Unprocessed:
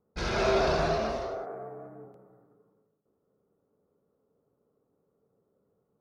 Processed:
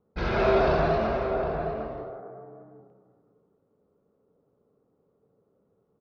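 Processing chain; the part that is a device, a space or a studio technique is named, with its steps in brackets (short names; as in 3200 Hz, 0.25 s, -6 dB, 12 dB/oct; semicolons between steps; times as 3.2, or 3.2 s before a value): shout across a valley (air absorption 290 m; outdoor echo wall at 130 m, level -7 dB); gain +4.5 dB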